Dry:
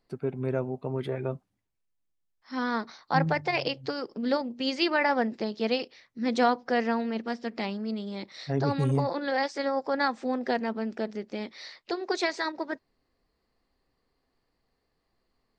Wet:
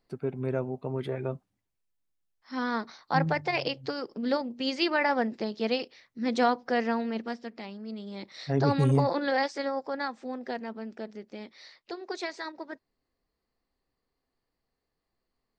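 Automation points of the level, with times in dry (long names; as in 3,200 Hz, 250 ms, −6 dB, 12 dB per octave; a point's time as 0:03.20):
0:07.23 −1 dB
0:07.63 −9.5 dB
0:08.65 +2.5 dB
0:09.21 +2.5 dB
0:10.10 −7 dB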